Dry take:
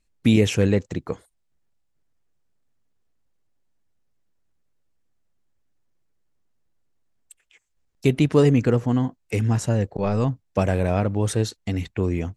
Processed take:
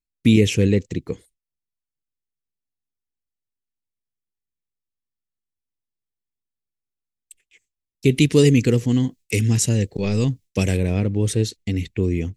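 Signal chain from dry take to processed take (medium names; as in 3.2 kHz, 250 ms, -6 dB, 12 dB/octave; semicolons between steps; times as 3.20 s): 8.11–10.77 s: treble shelf 2.7 kHz +11.5 dB; gate with hold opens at -48 dBFS; high-order bell 960 Hz -13 dB; trim +2.5 dB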